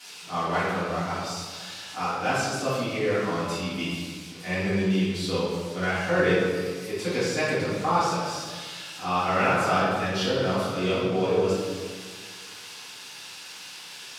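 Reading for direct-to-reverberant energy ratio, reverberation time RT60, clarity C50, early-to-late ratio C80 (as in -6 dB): -12.0 dB, 1.6 s, -1.5 dB, 1.5 dB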